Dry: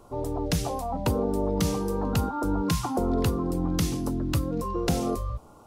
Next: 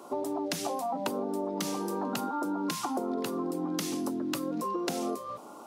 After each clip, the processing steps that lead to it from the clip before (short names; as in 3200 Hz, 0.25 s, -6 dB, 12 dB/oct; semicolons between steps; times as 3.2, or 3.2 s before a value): HPF 230 Hz 24 dB/oct; notch 470 Hz, Q 12; compressor 6:1, threshold -36 dBFS, peak gain reduction 12.5 dB; gain +6.5 dB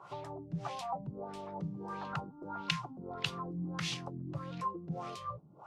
EQ curve 160 Hz 0 dB, 240 Hz -29 dB, 6500 Hz -1 dB; LFO low-pass sine 1.6 Hz 230–3200 Hz; bell 220 Hz -5 dB 1 oct; gain +10.5 dB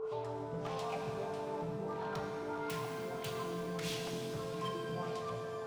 wavefolder -33.5 dBFS; whine 440 Hz -35 dBFS; shimmer reverb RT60 2.6 s, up +7 st, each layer -8 dB, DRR 0 dB; gain -3 dB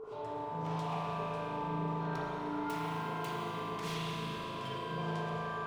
flange 2 Hz, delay 9.3 ms, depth 4.5 ms, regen -75%; spring tank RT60 3.9 s, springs 37 ms, chirp 25 ms, DRR -7 dB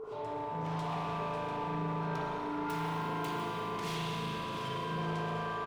soft clip -32.5 dBFS, distortion -16 dB; echo 0.694 s -10.5 dB; gain +3 dB